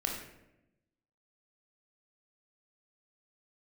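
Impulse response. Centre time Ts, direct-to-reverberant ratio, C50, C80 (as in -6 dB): 41 ms, -0.5 dB, 3.5 dB, 6.0 dB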